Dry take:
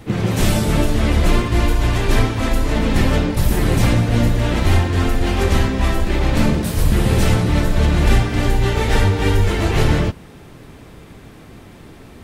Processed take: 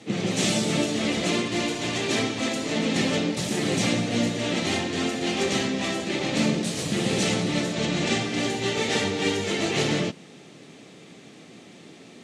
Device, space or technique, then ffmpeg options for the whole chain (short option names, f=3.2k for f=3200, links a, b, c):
television speaker: -filter_complex "[0:a]highpass=f=160:w=0.5412,highpass=f=160:w=1.3066,equalizer=f=990:t=q:w=4:g=-8,equalizer=f=1.5k:t=q:w=4:g=-7,equalizer=f=5.1k:t=q:w=4:g=-4,lowpass=f=6.7k:w=0.5412,lowpass=f=6.7k:w=1.3066,aemphasis=mode=production:type=75kf,asettb=1/sr,asplit=3[a][b][c];[a]atrim=end=7.734[d];[b]atrim=start=7.73:end=8.21,asetpts=PTS-STARTPTS,afade=t=in:d=0.004:c=qsin,afade=t=out:st=0.476:d=0.004:c=qsin,lowpass=f=8.9k:w=0.5412,lowpass=f=8.9k:w=1.3066[e];[c]atrim=start=8.206[f];[d][e]acrossfade=d=0.004:c1=hsin:c2=qsin[g];[g][f]acrossfade=d=0.004:c1=qsin:c2=hsin,volume=-4.5dB"